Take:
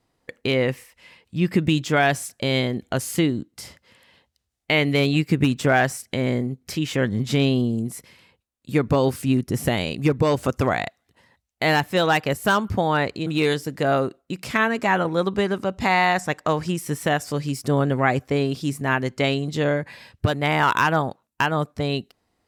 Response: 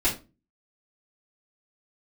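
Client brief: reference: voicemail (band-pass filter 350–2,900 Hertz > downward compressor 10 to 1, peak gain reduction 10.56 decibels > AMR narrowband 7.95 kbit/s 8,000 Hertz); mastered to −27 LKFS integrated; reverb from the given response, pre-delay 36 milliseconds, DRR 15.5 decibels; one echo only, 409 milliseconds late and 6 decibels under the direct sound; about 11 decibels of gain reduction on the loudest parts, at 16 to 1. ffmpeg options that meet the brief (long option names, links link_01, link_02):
-filter_complex "[0:a]acompressor=threshold=-26dB:ratio=16,aecho=1:1:409:0.501,asplit=2[link_01][link_02];[1:a]atrim=start_sample=2205,adelay=36[link_03];[link_02][link_03]afir=irnorm=-1:irlink=0,volume=-27dB[link_04];[link_01][link_04]amix=inputs=2:normalize=0,highpass=350,lowpass=2900,acompressor=threshold=-34dB:ratio=10,volume=14dB" -ar 8000 -c:a libopencore_amrnb -b:a 7950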